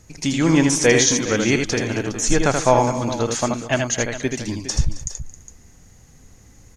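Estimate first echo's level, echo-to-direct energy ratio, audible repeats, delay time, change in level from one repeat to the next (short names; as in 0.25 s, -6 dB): -5.0 dB, -4.0 dB, 4, 80 ms, no steady repeat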